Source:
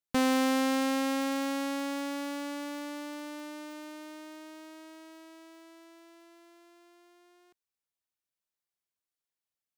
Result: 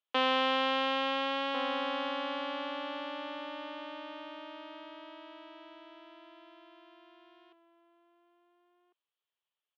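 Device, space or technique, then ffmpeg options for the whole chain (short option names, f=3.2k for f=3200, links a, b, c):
phone earpiece: -filter_complex "[0:a]highpass=f=310:w=0.5412,highpass=f=310:w=1.3066,highpass=460,equalizer=f=520:t=q:w=4:g=-4,equalizer=f=760:t=q:w=4:g=-5,equalizer=f=1.5k:t=q:w=4:g=-5,equalizer=f=2.1k:t=q:w=4:g=-7,equalizer=f=3.2k:t=q:w=4:g=7,lowpass=f=3.2k:w=0.5412,lowpass=f=3.2k:w=1.3066,asplit=2[a][b];[b]adelay=1399,volume=-7dB,highshelf=f=4k:g=-31.5[c];[a][c]amix=inputs=2:normalize=0,volume=6dB"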